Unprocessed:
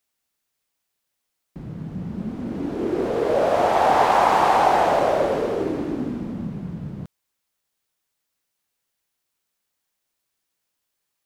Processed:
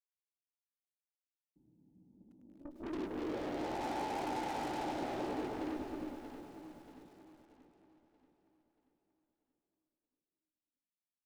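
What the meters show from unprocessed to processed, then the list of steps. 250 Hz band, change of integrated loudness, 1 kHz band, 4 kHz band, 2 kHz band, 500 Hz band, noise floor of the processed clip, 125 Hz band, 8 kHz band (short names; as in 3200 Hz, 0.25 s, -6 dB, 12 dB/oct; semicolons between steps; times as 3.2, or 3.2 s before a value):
-14.0 dB, -19.0 dB, -22.0 dB, -16.0 dB, -19.5 dB, -21.0 dB, under -85 dBFS, -21.0 dB, -15.5 dB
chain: gate -23 dBFS, range -24 dB; in parallel at -6 dB: backlash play -20.5 dBFS; on the sum: vocal tract filter u; soft clip -32 dBFS, distortion -8 dB; added harmonics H 4 -12 dB, 5 -20 dB, 8 -31 dB, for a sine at -32 dBFS; doubler 16 ms -10 dB; on a send: echo with dull and thin repeats by turns 0.316 s, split 830 Hz, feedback 65%, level -5 dB; on the sum: lo-fi delay 0.103 s, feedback 80%, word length 9-bit, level -12.5 dB; gain -5.5 dB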